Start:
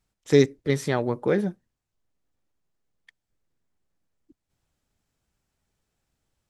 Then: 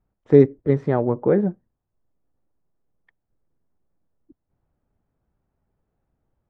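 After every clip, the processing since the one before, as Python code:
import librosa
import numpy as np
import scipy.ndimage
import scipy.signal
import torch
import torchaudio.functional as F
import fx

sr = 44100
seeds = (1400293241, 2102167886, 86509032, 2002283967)

y = scipy.signal.sosfilt(scipy.signal.butter(2, 1000.0, 'lowpass', fs=sr, output='sos'), x)
y = y * 10.0 ** (5.0 / 20.0)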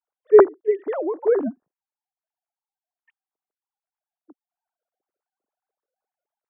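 y = fx.sine_speech(x, sr)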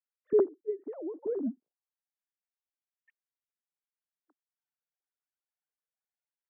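y = fx.auto_wah(x, sr, base_hz=250.0, top_hz=1900.0, q=2.2, full_db=-25.0, direction='down')
y = y * 10.0 ** (-5.0 / 20.0)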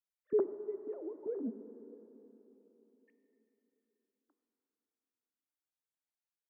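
y = fx.rev_plate(x, sr, seeds[0], rt60_s=3.9, hf_ratio=0.8, predelay_ms=0, drr_db=9.5)
y = y * 10.0 ** (-6.0 / 20.0)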